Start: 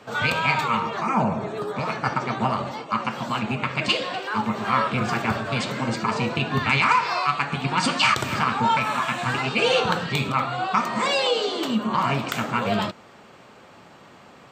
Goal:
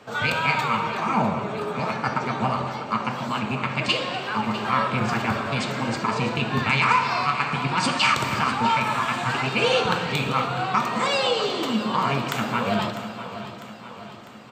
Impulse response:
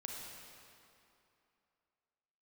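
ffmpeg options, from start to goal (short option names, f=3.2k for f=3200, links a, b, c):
-filter_complex "[0:a]aecho=1:1:650|1300|1950|2600|3250|3900:0.211|0.12|0.0687|0.0391|0.0223|0.0127,asplit=2[a][b];[1:a]atrim=start_sample=2205[c];[b][c]afir=irnorm=-1:irlink=0,volume=-1dB[d];[a][d]amix=inputs=2:normalize=0,volume=-4.5dB"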